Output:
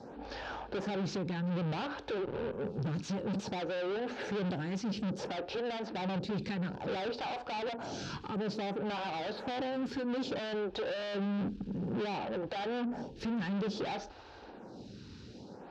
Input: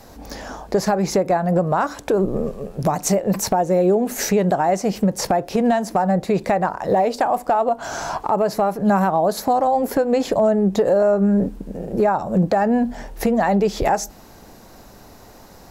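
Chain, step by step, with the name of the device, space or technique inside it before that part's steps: vibe pedal into a guitar amplifier (lamp-driven phase shifter 0.58 Hz; valve stage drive 34 dB, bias 0.35; cabinet simulation 78–4400 Hz, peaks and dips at 660 Hz -8 dB, 1.1 kHz -8 dB, 2 kHz -9 dB); trim +2.5 dB

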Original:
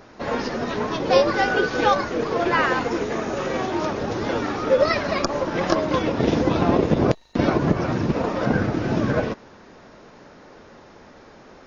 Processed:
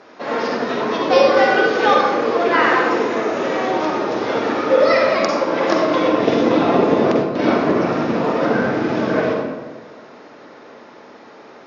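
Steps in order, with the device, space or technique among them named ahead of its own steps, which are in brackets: supermarket ceiling speaker (band-pass 290–5500 Hz; reverberation RT60 1.3 s, pre-delay 41 ms, DRR -1 dB); trim +2.5 dB

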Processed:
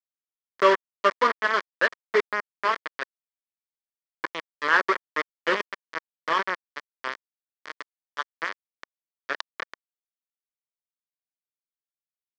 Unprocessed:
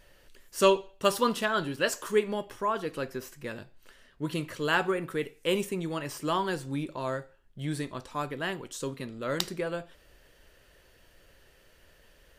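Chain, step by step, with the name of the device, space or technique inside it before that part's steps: hand-held game console (bit crusher 4-bit; cabinet simulation 440–4000 Hz, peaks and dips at 770 Hz -10 dB, 1.1 kHz +4 dB, 1.8 kHz +6 dB, 2.7 kHz -10 dB, 3.8 kHz -9 dB); trim +5 dB

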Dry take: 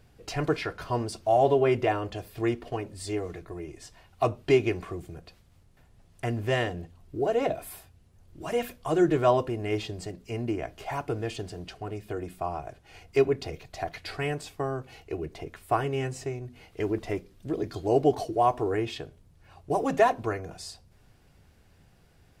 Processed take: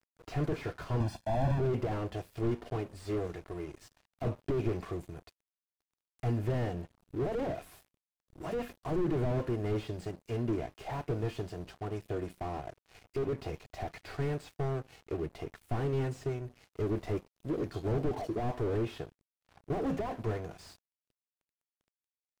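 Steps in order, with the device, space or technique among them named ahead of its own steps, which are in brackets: early transistor amplifier (crossover distortion -49.5 dBFS; slew-rate limiter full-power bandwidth 13 Hz); 1.00–1.60 s: comb 1.2 ms, depth 99%

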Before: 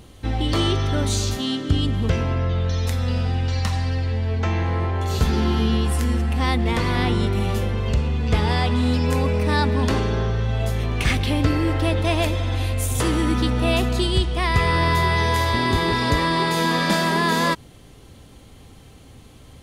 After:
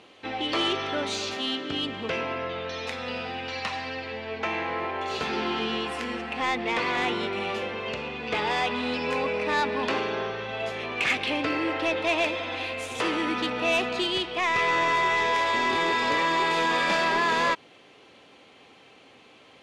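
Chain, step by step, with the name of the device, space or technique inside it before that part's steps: intercom (band-pass 410–4000 Hz; peaking EQ 2.5 kHz +6.5 dB 0.4 oct; saturation -16.5 dBFS, distortion -16 dB)

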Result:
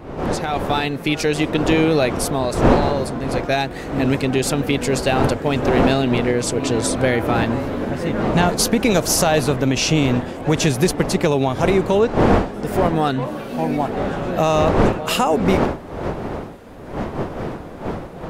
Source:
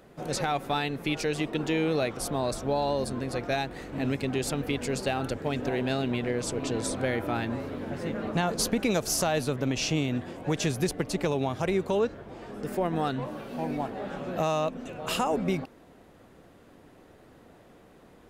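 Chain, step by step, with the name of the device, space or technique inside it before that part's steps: smartphone video outdoors (wind noise 560 Hz -32 dBFS; level rider gain up to 11 dB; AAC 96 kbps 48 kHz)

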